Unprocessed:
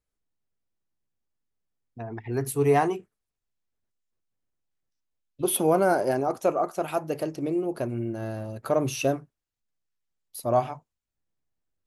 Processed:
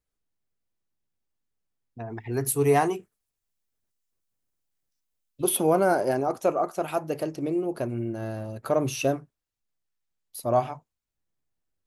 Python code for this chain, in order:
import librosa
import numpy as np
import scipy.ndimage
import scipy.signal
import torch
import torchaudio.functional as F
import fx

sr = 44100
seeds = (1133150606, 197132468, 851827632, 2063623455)

y = fx.high_shelf(x, sr, hz=5800.0, db=9.0, at=(2.09, 5.49))